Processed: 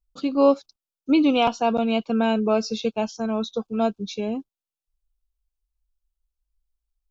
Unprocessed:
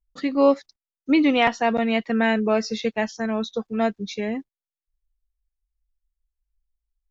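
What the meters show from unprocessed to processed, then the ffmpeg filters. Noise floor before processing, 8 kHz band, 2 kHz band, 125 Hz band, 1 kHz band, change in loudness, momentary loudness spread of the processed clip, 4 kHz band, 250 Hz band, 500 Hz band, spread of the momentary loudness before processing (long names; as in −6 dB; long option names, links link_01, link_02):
below −85 dBFS, can't be measured, −7.5 dB, 0.0 dB, 0.0 dB, −0.5 dB, 10 LU, 0.0 dB, 0.0 dB, 0.0 dB, 10 LU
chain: -af "asuperstop=centerf=1900:order=4:qfactor=2"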